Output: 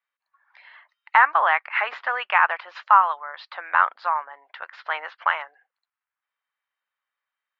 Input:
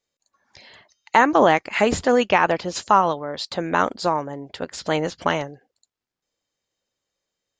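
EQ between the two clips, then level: HPF 1100 Hz 24 dB/oct; LPF 1900 Hz 12 dB/oct; air absorption 270 m; +8.0 dB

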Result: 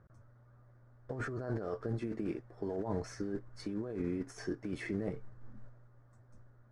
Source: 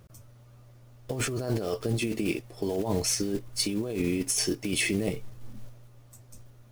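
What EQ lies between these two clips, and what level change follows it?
air absorption 100 m; resonant high shelf 2100 Hz -9 dB, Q 3; -8.0 dB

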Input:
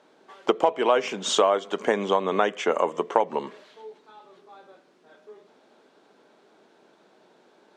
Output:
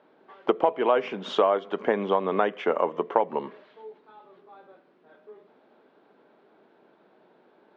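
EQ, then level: air absorption 350 m; 0.0 dB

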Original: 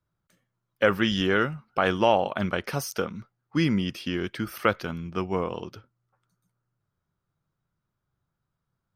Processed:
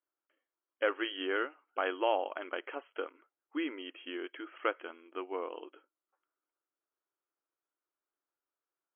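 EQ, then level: brick-wall FIR band-pass 270–3300 Hz; -9.0 dB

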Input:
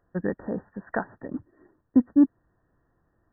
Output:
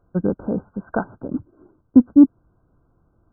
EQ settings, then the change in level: brick-wall FIR low-pass 1600 Hz; low shelf 330 Hz +6.5 dB; +3.5 dB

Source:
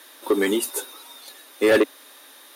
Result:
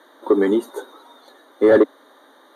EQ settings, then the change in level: running mean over 17 samples; HPF 78 Hz; +5.0 dB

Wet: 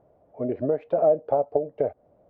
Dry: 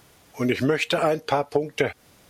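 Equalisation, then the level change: synth low-pass 620 Hz, resonance Q 4.9; -8.0 dB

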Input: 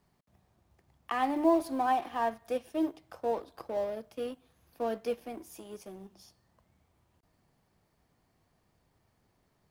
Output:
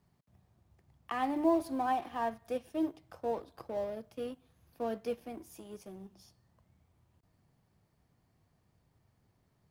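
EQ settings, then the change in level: bell 110 Hz +8 dB 1.8 oct; -4.0 dB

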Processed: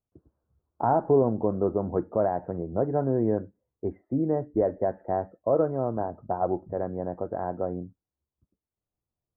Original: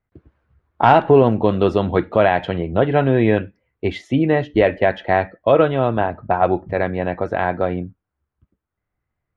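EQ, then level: Gaussian blur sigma 8.5 samples; air absorption 200 m; low shelf 160 Hz -7.5 dB; -6.0 dB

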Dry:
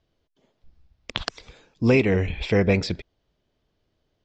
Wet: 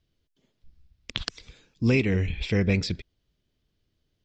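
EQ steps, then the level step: bell 750 Hz -11.5 dB 2 oct; 0.0 dB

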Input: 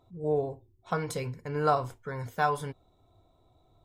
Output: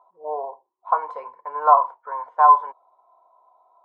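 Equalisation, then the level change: Chebyshev high-pass 600 Hz, order 3; synth low-pass 1000 Hz, resonance Q 11; +2.5 dB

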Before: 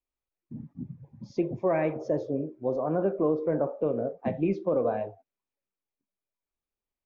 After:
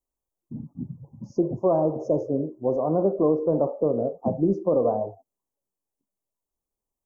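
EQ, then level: inverse Chebyshev band-stop 1800–3700 Hz, stop band 50 dB; +4.5 dB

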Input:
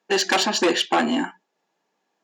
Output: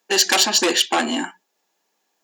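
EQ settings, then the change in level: HPF 190 Hz; high shelf 2900 Hz +8.5 dB; high shelf 9400 Hz +11.5 dB; -1.0 dB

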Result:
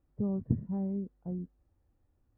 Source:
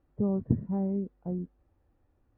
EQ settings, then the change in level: tone controls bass +5 dB, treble +3 dB; -7.0 dB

